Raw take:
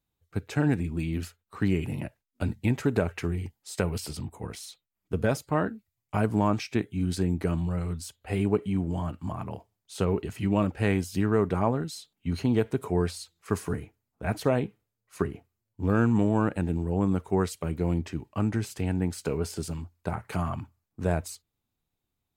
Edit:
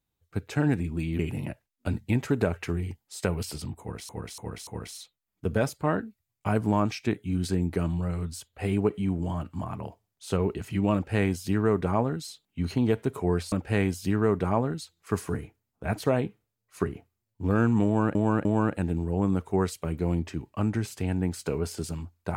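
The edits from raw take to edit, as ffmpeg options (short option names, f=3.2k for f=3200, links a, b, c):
-filter_complex "[0:a]asplit=9[a][b][c][d][e][f][g][h][i];[a]atrim=end=1.192[j];[b]atrim=start=1.738:end=4.642[k];[c]atrim=start=4.348:end=4.642[l];[d]atrim=start=4.348:end=4.642[m];[e]atrim=start=4.348:end=13.202[n];[f]atrim=start=10.618:end=11.912[o];[g]atrim=start=13.198:end=16.542[p];[h]atrim=start=16.238:end=16.542[q];[i]atrim=start=16.238[r];[j][k]acrossfade=d=0.004:c1=hsin:c2=hsin[s];[s][l]acrossfade=d=0.004:c1=hsin:c2=hsin[t];[t][m]acrossfade=d=0.004:c1=hsin:c2=hsin[u];[u][n]acrossfade=d=0.004:c1=hsin:c2=hsin[v];[v][o]acrossfade=d=0.004:c1=hsin:c2=hsin[w];[w][p]acrossfade=d=0.004:c1=hsin:c2=hsin[x];[x][q]acrossfade=d=0.004:c1=hsin:c2=hsin[y];[y][r]acrossfade=d=0.004:c1=hsin:c2=hsin"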